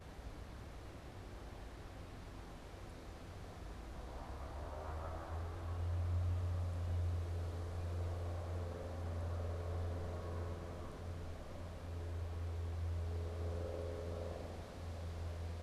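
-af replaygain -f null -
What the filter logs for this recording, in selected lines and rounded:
track_gain = +31.2 dB
track_peak = 0.023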